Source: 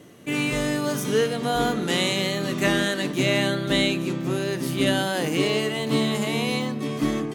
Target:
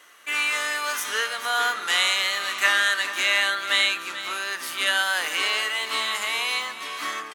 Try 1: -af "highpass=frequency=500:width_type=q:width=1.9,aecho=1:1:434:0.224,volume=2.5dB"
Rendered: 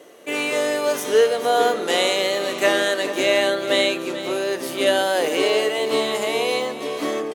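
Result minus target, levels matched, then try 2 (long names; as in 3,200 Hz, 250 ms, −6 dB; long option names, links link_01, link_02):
500 Hz band +16.5 dB
-af "highpass=frequency=1300:width_type=q:width=1.9,aecho=1:1:434:0.224,volume=2.5dB"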